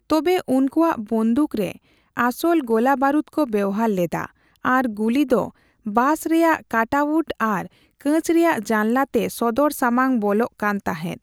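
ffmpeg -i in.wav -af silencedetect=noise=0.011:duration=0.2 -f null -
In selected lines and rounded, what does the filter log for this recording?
silence_start: 1.76
silence_end: 2.17 | silence_duration: 0.41
silence_start: 4.26
silence_end: 4.56 | silence_duration: 0.29
silence_start: 5.50
silence_end: 5.86 | silence_duration: 0.36
silence_start: 7.67
silence_end: 8.01 | silence_duration: 0.34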